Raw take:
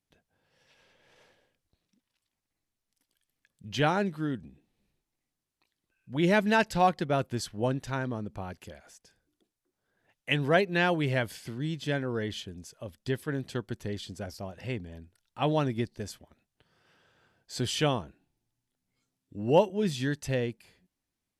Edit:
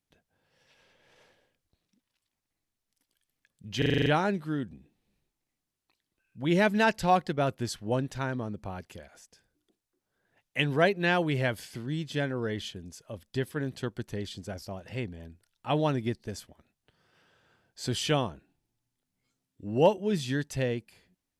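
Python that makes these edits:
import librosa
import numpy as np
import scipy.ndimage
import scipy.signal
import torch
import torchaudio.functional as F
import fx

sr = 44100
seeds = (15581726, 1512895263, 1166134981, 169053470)

y = fx.edit(x, sr, fx.stutter(start_s=3.78, slice_s=0.04, count=8), tone=tone)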